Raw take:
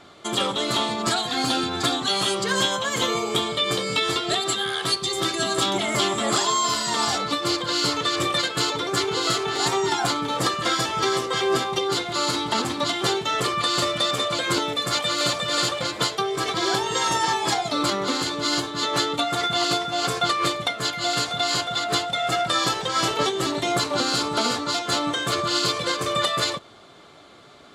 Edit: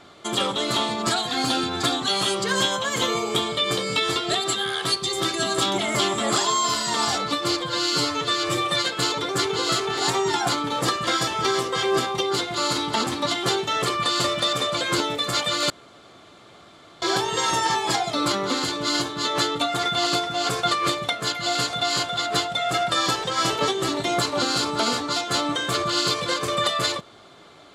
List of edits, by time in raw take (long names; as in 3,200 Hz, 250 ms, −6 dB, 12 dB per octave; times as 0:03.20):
0:07.60–0:08.44: time-stretch 1.5×
0:15.28–0:16.60: fill with room tone